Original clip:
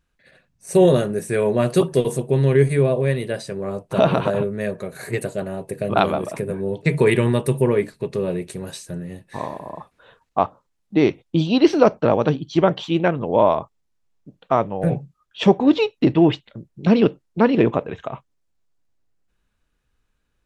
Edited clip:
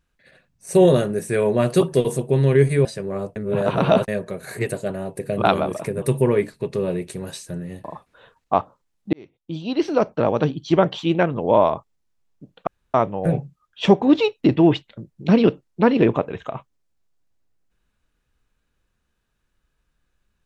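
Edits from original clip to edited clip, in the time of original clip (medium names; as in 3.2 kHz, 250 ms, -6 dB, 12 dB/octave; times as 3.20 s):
2.85–3.37 s: delete
3.88–4.60 s: reverse
6.54–7.42 s: delete
9.24–9.69 s: delete
10.98–12.46 s: fade in
14.52 s: insert room tone 0.27 s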